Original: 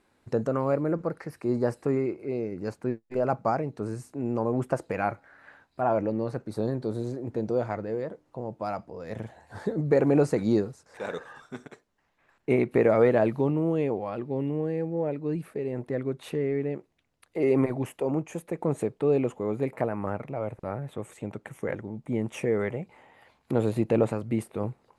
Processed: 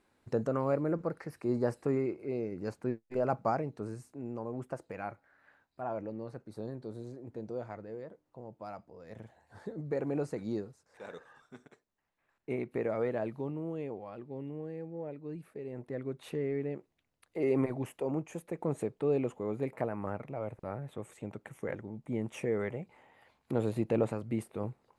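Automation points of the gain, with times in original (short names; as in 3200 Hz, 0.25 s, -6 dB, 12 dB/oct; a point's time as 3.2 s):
3.58 s -4.5 dB
4.42 s -12 dB
15.4 s -12 dB
16.32 s -6 dB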